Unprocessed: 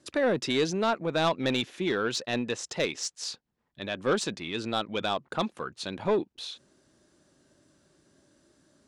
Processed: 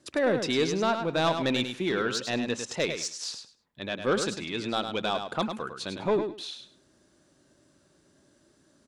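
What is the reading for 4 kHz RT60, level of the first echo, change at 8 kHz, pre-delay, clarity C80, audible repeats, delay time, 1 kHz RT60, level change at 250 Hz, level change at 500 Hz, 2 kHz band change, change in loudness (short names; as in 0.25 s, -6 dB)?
none, -7.5 dB, +0.5 dB, none, none, 2, 0.103 s, none, +1.0 dB, +0.5 dB, +1.0 dB, +1.0 dB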